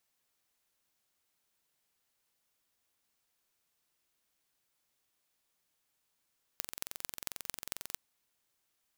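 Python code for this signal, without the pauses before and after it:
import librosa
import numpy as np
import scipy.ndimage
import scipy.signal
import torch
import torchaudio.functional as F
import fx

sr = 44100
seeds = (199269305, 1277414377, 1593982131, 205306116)

y = fx.impulse_train(sr, length_s=1.37, per_s=22.3, accent_every=5, level_db=-7.5)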